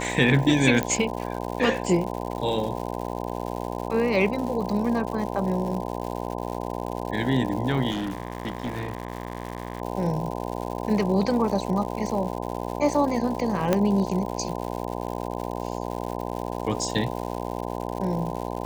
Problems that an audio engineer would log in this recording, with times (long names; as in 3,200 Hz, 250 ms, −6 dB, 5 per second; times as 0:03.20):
mains buzz 60 Hz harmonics 17 −31 dBFS
surface crackle 200 per second −32 dBFS
0:00.83: click −11 dBFS
0:07.90–0:09.82: clipping −25 dBFS
0:13.73: click −7 dBFS